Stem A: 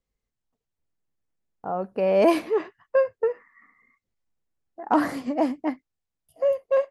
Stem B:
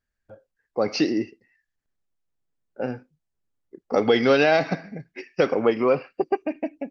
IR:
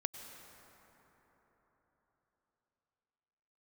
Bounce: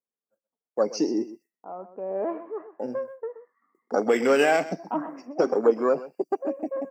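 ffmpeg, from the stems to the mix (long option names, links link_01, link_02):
-filter_complex "[0:a]lowpass=frequency=1300:width=0.5412,lowpass=frequency=1300:width=1.3066,lowshelf=frequency=350:gain=-6,acontrast=90,volume=-10dB,asplit=2[link_01][link_02];[link_02]volume=-13dB[link_03];[1:a]afwtdn=0.0562,agate=range=-33dB:threshold=-52dB:ratio=3:detection=peak,aexciter=amount=11.7:drive=9.2:freq=5800,volume=2.5dB,asplit=2[link_04][link_05];[link_05]volume=-16.5dB[link_06];[link_03][link_06]amix=inputs=2:normalize=0,aecho=0:1:126:1[link_07];[link_01][link_04][link_07]amix=inputs=3:normalize=0,highpass=frequency=190:width=0.5412,highpass=frequency=190:width=1.3066,flanger=delay=0.5:depth=2.6:regen=71:speed=0.3:shape=sinusoidal"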